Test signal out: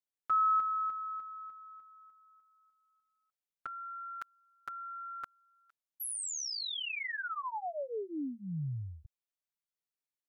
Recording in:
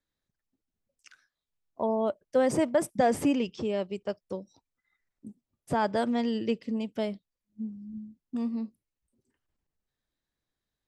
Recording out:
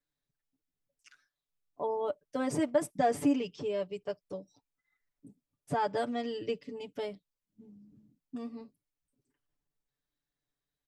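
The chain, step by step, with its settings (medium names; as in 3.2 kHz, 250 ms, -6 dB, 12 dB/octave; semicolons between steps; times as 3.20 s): comb 6.9 ms, depth 99%; trim -7 dB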